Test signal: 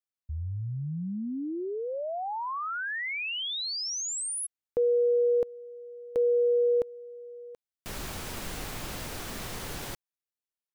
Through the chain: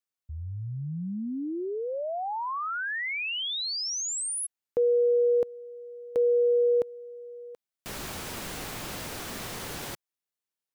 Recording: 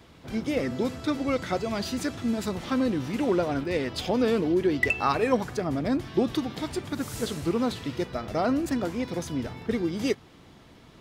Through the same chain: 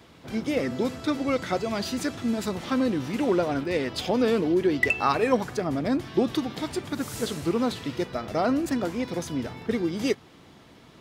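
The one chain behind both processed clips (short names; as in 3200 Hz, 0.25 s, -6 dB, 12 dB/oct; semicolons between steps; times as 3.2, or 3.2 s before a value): low shelf 63 Hz -11.5 dB; gain +1.5 dB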